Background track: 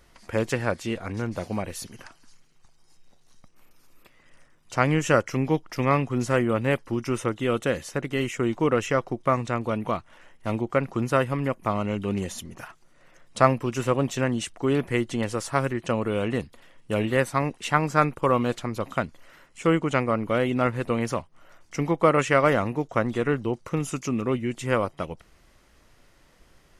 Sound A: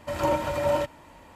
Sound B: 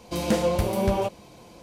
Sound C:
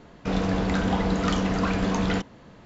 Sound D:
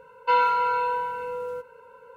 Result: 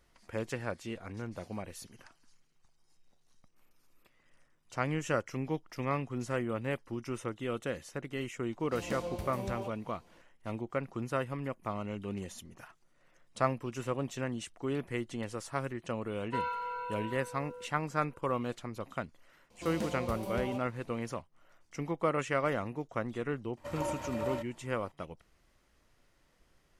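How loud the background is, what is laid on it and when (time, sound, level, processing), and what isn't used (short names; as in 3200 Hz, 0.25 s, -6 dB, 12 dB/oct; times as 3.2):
background track -11 dB
8.6 add B -15.5 dB
16.05 add D -14.5 dB
19.5 add B -14 dB
23.57 add A -11.5 dB
not used: C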